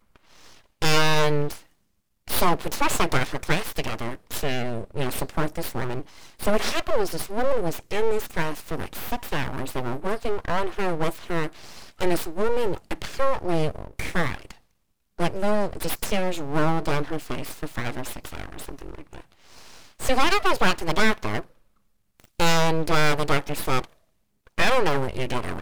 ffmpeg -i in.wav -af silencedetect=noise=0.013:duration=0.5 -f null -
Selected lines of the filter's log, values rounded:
silence_start: 1.61
silence_end: 2.28 | silence_duration: 0.67
silence_start: 14.52
silence_end: 15.19 | silence_duration: 0.67
silence_start: 21.45
silence_end: 22.20 | silence_duration: 0.75
silence_start: 23.85
silence_end: 24.47 | silence_duration: 0.62